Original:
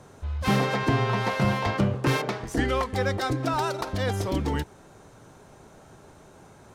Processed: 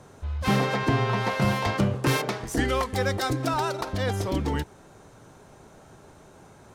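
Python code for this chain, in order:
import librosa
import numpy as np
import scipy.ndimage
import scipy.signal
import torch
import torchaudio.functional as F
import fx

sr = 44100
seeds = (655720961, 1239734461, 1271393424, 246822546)

y = fx.high_shelf(x, sr, hz=6100.0, db=8.5, at=(1.42, 3.54))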